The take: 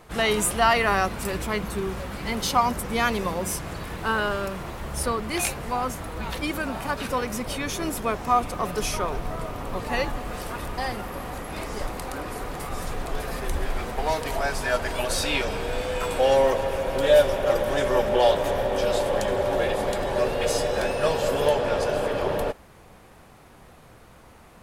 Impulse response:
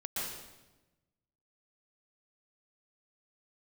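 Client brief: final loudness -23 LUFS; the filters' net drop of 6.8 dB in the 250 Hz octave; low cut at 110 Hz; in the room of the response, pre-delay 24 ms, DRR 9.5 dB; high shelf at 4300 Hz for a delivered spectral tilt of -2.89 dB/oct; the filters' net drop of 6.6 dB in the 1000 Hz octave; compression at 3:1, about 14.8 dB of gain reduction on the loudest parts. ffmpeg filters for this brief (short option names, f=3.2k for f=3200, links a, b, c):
-filter_complex "[0:a]highpass=110,equalizer=f=250:t=o:g=-8.5,equalizer=f=1k:t=o:g=-9,highshelf=f=4.3k:g=8,acompressor=threshold=-36dB:ratio=3,asplit=2[a][b];[1:a]atrim=start_sample=2205,adelay=24[c];[b][c]afir=irnorm=-1:irlink=0,volume=-13dB[d];[a][d]amix=inputs=2:normalize=0,volume=12.5dB"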